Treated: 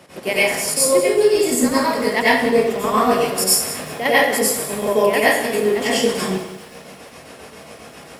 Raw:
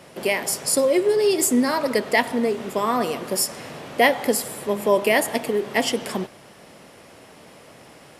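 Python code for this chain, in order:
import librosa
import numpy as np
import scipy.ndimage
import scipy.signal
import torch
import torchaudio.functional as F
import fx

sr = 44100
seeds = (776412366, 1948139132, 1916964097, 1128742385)

p1 = scipy.signal.sosfilt(scipy.signal.butter(2, 67.0, 'highpass', fs=sr, output='sos'), x)
p2 = fx.rider(p1, sr, range_db=5, speed_s=0.5)
p3 = p1 + F.gain(torch.from_numpy(p2), 1.0).numpy()
p4 = fx.chopper(p3, sr, hz=7.4, depth_pct=60, duty_pct=45)
p5 = fx.rev_plate(p4, sr, seeds[0], rt60_s=0.53, hf_ratio=1.0, predelay_ms=80, drr_db=-8.5)
p6 = fx.echo_crushed(p5, sr, ms=191, feedback_pct=35, bits=5, wet_db=-14.5)
y = F.gain(torch.from_numpy(p6), -8.0).numpy()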